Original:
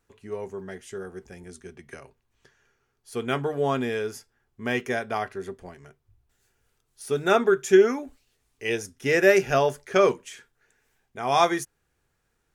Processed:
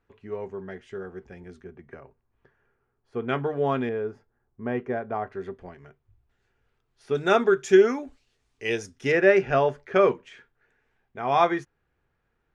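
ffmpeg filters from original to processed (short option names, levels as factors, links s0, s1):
-af "asetnsamples=n=441:p=0,asendcmd='1.64 lowpass f 1400;3.29 lowpass f 2700;3.89 lowpass f 1100;5.32 lowpass f 2800;7.15 lowpass f 6000;9.12 lowpass f 2500',lowpass=2700"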